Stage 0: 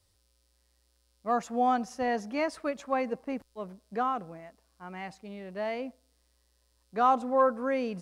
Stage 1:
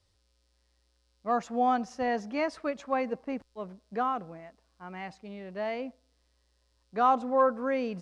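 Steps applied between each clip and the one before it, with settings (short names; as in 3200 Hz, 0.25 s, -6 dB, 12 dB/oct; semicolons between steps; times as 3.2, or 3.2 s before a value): LPF 6300 Hz 12 dB/oct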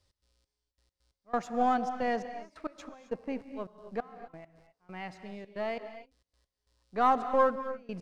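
half-wave gain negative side -3 dB; step gate "x.xx...x.x..xxxx" 135 bpm -24 dB; non-linear reverb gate 0.29 s rising, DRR 10.5 dB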